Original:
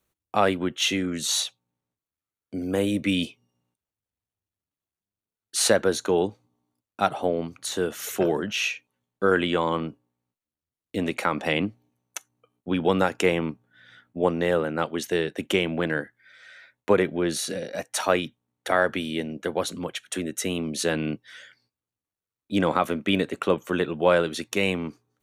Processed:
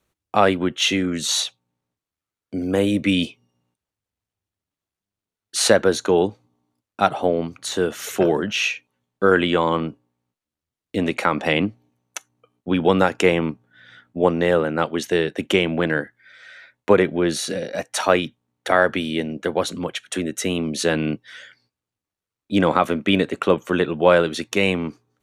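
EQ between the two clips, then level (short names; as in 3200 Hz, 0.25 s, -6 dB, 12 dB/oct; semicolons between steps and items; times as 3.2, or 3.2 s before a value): high shelf 11000 Hz -11 dB; +5.0 dB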